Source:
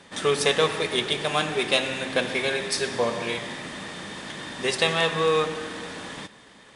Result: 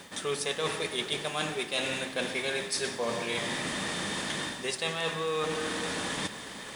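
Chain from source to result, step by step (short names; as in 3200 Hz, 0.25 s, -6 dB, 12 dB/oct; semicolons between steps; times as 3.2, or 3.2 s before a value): high shelf 6600 Hz +8.5 dB; notches 60/120 Hz; reverse; compressor 6:1, threshold -38 dBFS, peak gain reduction 21 dB; reverse; requantised 12-bit, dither triangular; gain +8 dB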